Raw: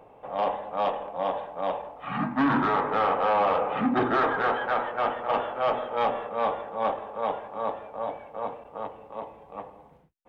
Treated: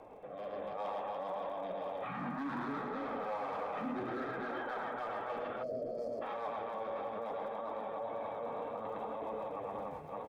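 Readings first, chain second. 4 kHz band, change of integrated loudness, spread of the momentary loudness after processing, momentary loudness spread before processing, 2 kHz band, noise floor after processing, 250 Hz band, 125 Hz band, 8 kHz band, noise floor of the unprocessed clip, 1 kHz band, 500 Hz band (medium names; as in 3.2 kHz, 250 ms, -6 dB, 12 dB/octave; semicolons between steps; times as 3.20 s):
-14.5 dB, -12.5 dB, 3 LU, 15 LU, -13.0 dB, -46 dBFS, -12.0 dB, -11.5 dB, no reading, -53 dBFS, -13.0 dB, -10.0 dB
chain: rotary cabinet horn 0.75 Hz, later 7.5 Hz, at 6.31 s; reverse bouncing-ball echo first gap 110 ms, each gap 1.6×, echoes 5; in parallel at -11.5 dB: wavefolder -23 dBFS; on the sum: time-frequency box 5.62–6.22 s, 730–4200 Hz -26 dB; reverse; compression, threshold -37 dBFS, peak gain reduction 17 dB; reverse; bass shelf 110 Hz -5 dB; peak limiter -38.5 dBFS, peak gain reduction 10 dB; crackle 36 per s -62 dBFS; level rider gain up to 6 dB; band-stop 2.9 kHz, Q 8.2; flange 0.65 Hz, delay 2.7 ms, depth 9.8 ms, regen -38%; trim +4 dB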